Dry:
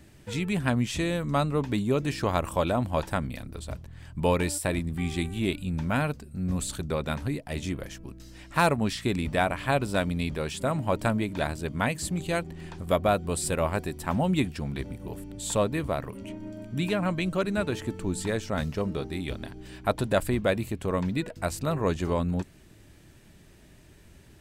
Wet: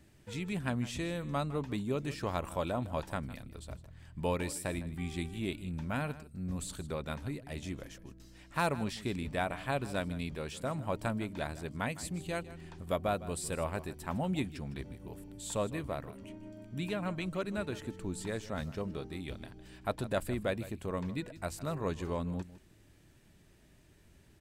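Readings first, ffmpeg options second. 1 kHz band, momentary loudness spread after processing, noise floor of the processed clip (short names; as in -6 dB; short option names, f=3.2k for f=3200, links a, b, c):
-8.5 dB, 10 LU, -61 dBFS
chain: -af "aecho=1:1:157:0.15,volume=-8.5dB"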